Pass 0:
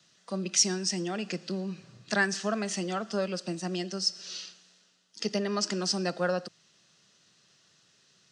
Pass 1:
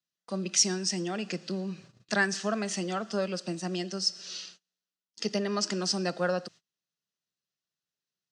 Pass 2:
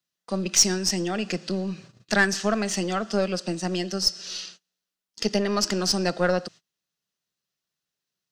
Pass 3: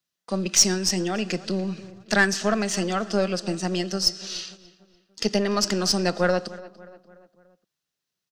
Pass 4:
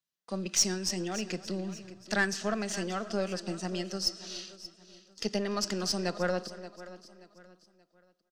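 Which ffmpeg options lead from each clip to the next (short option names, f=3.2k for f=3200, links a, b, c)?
-af "agate=range=-29dB:threshold=-50dB:ratio=16:detection=peak"
-af "aeval=exprs='0.299*(cos(1*acos(clip(val(0)/0.299,-1,1)))-cos(1*PI/2))+0.0119*(cos(8*acos(clip(val(0)/0.299,-1,1)))-cos(8*PI/2))':c=same,volume=5.5dB"
-filter_complex "[0:a]asplit=2[a][b];[b]adelay=291,lowpass=f=2.8k:p=1,volume=-18dB,asplit=2[c][d];[d]adelay=291,lowpass=f=2.8k:p=1,volume=0.51,asplit=2[e][f];[f]adelay=291,lowpass=f=2.8k:p=1,volume=0.51,asplit=2[g][h];[h]adelay=291,lowpass=f=2.8k:p=1,volume=0.51[i];[a][c][e][g][i]amix=inputs=5:normalize=0,volume=1dB"
-af "aecho=1:1:579|1158|1737:0.158|0.0555|0.0194,volume=-8.5dB"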